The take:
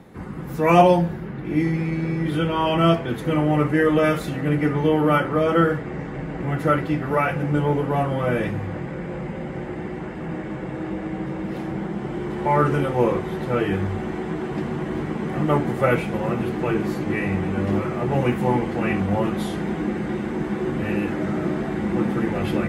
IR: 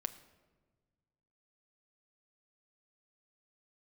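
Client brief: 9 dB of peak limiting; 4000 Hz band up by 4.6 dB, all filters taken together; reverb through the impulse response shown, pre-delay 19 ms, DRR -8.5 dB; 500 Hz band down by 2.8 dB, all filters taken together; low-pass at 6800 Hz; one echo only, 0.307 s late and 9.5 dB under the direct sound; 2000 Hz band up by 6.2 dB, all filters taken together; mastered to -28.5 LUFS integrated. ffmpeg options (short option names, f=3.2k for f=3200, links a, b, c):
-filter_complex "[0:a]lowpass=6.8k,equalizer=f=500:t=o:g=-4,equalizer=f=2k:t=o:g=7.5,equalizer=f=4k:t=o:g=3,alimiter=limit=-12dB:level=0:latency=1,aecho=1:1:307:0.335,asplit=2[a][b];[1:a]atrim=start_sample=2205,adelay=19[c];[b][c]afir=irnorm=-1:irlink=0,volume=9dB[d];[a][d]amix=inputs=2:normalize=0,volume=-14.5dB"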